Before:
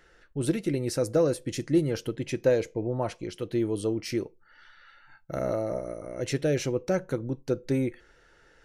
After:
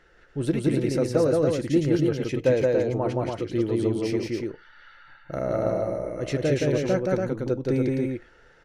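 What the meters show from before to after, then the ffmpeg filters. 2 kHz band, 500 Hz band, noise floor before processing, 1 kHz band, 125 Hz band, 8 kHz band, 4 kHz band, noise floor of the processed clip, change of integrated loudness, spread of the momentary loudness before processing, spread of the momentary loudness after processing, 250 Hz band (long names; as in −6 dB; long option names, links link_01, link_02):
+3.5 dB, +4.5 dB, −60 dBFS, +4.5 dB, +4.5 dB, −2.5 dB, +1.0 dB, −56 dBFS, +4.0 dB, 8 LU, 9 LU, +4.5 dB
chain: -af "highshelf=frequency=6100:gain=-12,aecho=1:1:172|282.8:0.794|0.631,volume=1.5dB"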